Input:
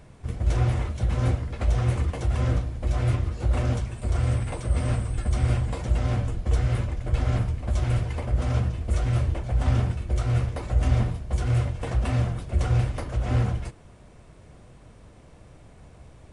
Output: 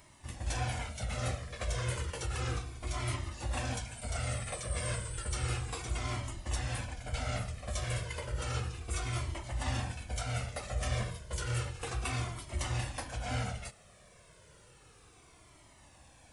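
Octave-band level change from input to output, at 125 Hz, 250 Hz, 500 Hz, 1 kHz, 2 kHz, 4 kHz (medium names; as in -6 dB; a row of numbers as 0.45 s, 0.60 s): -13.0 dB, -12.5 dB, -8.0 dB, -4.5 dB, -1.5 dB, +1.0 dB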